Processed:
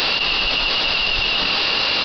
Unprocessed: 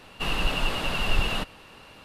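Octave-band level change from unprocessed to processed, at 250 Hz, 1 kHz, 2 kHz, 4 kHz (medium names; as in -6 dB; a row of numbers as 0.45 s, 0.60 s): +2.5 dB, +7.5 dB, +11.5 dB, +15.0 dB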